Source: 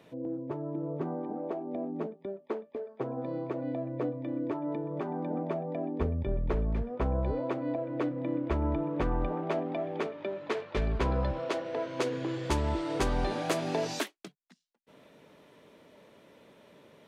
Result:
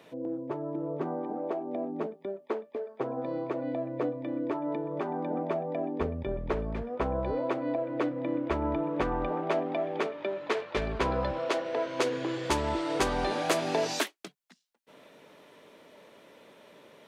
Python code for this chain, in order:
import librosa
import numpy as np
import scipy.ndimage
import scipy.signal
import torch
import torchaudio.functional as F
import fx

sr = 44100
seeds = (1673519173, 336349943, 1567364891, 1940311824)

y = fx.low_shelf(x, sr, hz=200.0, db=-12.0)
y = y * librosa.db_to_amplitude(4.5)